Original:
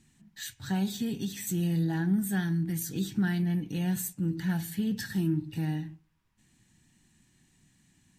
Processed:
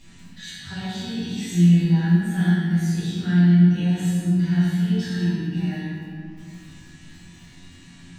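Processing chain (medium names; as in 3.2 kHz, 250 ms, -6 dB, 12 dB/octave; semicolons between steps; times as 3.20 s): low-pass 4.9 kHz 12 dB/octave; treble shelf 2.4 kHz +9 dB; upward compressor, threshold -37 dBFS; feedback comb 89 Hz, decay 0.61 s, harmonics all, mix 90%; crackle 12 per s -48 dBFS; 1.32–1.84 s: doubling 18 ms -2 dB; reverberation RT60 2.3 s, pre-delay 4 ms, DRR -15.5 dB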